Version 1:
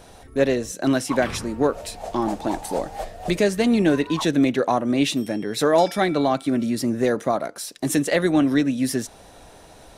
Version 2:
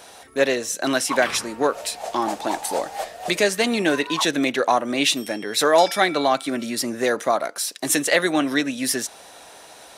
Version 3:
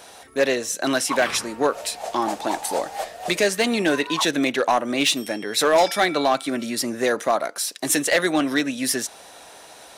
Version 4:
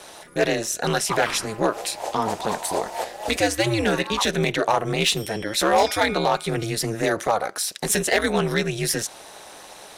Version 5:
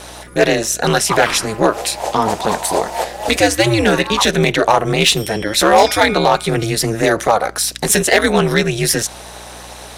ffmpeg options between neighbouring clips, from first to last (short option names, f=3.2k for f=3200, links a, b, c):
-af "highpass=f=1k:p=1,volume=7dB"
-af "volume=11dB,asoftclip=hard,volume=-11dB"
-filter_complex "[0:a]asplit=2[a][b];[b]alimiter=limit=-21dB:level=0:latency=1,volume=-3dB[c];[a][c]amix=inputs=2:normalize=0,aeval=exprs='val(0)*sin(2*PI*110*n/s)':c=same"
-af "aeval=exprs='val(0)+0.00398*(sin(2*PI*60*n/s)+sin(2*PI*2*60*n/s)/2+sin(2*PI*3*60*n/s)/3+sin(2*PI*4*60*n/s)/4+sin(2*PI*5*60*n/s)/5)':c=same,volume=8dB"